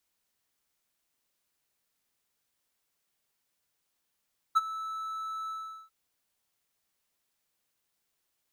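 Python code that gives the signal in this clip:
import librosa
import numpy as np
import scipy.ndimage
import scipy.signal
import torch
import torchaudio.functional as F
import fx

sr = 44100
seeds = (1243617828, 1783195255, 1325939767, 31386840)

y = fx.adsr_tone(sr, wave='triangle', hz=1310.0, attack_ms=20.0, decay_ms=29.0, sustain_db=-16.5, held_s=0.94, release_ms=405.0, level_db=-15.5)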